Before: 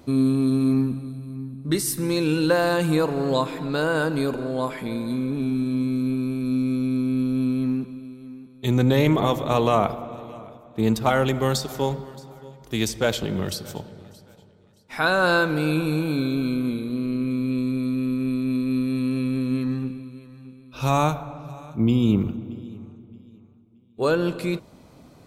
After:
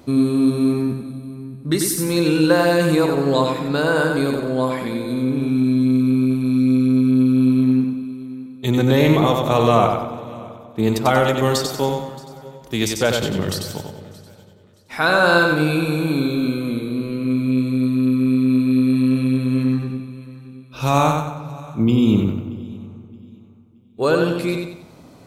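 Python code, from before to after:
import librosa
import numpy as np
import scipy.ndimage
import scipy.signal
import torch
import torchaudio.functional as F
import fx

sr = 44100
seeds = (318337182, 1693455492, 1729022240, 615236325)

y = fx.low_shelf(x, sr, hz=60.0, db=-6.0)
y = fx.echo_feedback(y, sr, ms=93, feedback_pct=38, wet_db=-4.5)
y = y * 10.0 ** (3.5 / 20.0)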